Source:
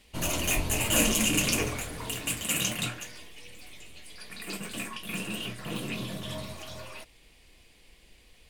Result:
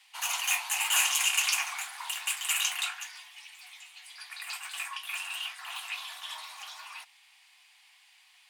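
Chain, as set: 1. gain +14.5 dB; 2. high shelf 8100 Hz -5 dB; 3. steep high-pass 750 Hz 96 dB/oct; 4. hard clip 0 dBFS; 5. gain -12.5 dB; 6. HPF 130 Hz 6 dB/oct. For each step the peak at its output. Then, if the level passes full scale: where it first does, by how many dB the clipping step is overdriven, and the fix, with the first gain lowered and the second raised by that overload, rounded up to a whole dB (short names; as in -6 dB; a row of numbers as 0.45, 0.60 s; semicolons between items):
+4.5, +3.5, +3.0, 0.0, -12.5, -12.5 dBFS; step 1, 3.0 dB; step 1 +11.5 dB, step 5 -9.5 dB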